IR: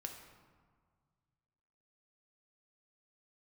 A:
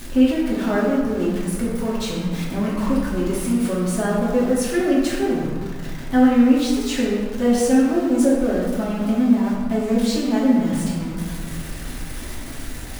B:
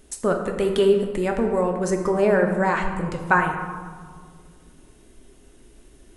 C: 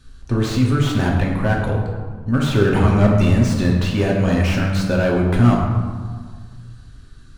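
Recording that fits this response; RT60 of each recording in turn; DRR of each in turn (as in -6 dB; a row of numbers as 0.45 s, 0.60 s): B; 1.7 s, 1.7 s, 1.7 s; -7.0 dB, 2.5 dB, -2.0 dB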